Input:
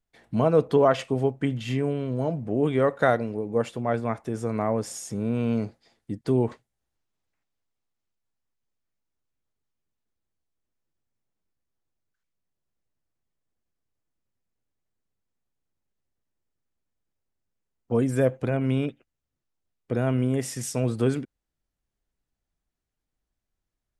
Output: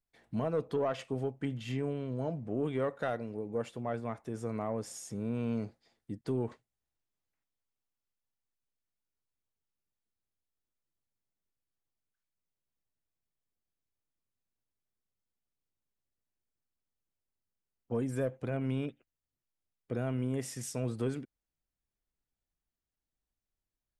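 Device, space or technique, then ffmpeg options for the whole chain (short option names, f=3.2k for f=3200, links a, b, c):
soft clipper into limiter: -filter_complex "[0:a]asoftclip=type=tanh:threshold=-10.5dB,alimiter=limit=-15.5dB:level=0:latency=1:release=324,asettb=1/sr,asplit=3[a][b][c];[a]atrim=end=1.724[d];[b]atrim=start=1.72:end=2.5,asetpts=PTS-STARTPTS,afade=t=in:d=0.004:c=qsin,afade=t=out:st=0.776:d=0.004:c=qsin,lowpass=f=9.3k:w=0.5412,lowpass=f=9.3k:w=1.3066[e];[c]atrim=start=2.496[f];[d][e]acrossfade=d=0.004:c1=hsin:c2=qsin[g];[g][f]acrossfade=d=0.004:c1=qsin:c2=hsin,volume=-8dB"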